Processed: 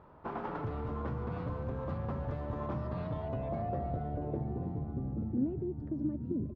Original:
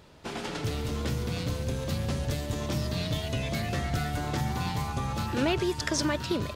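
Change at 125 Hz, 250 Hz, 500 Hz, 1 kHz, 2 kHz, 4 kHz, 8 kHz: −6.0 dB, −4.0 dB, −5.5 dB, −6.0 dB, −17.0 dB, below −25 dB, below −40 dB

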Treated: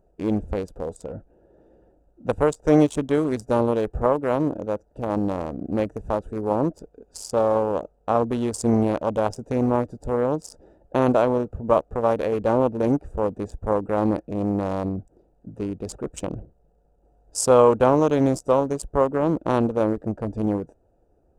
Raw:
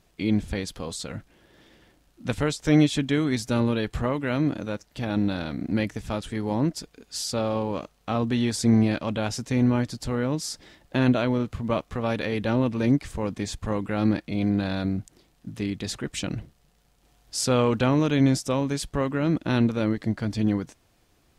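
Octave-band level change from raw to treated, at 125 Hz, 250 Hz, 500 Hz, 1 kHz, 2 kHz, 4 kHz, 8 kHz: −2.5, −0.5, +8.0, +7.5, −4.5, −9.0, −1.0 decibels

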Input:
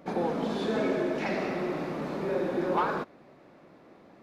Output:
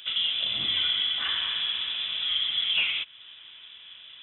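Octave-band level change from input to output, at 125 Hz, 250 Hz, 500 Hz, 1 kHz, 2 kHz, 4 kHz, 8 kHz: below −10 dB, below −20 dB, below −25 dB, −13.0 dB, +5.5 dB, +24.5 dB, can't be measured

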